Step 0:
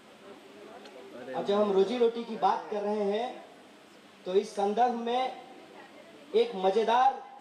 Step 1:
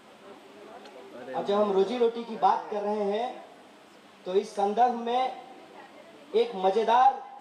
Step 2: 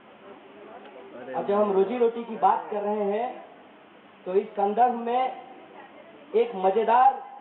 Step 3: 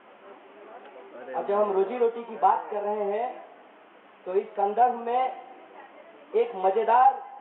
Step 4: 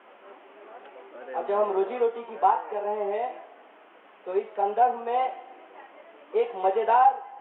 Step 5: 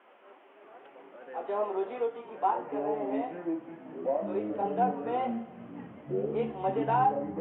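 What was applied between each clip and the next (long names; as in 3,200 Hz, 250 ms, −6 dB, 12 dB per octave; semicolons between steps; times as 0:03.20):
parametric band 880 Hz +4 dB 1 octave
Butterworth low-pass 3,200 Hz 72 dB per octave; level +2 dB
bass and treble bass −13 dB, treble −15 dB
high-pass filter 290 Hz 12 dB per octave
delay with pitch and tempo change per echo 623 ms, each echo −6 semitones, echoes 3; level −6.5 dB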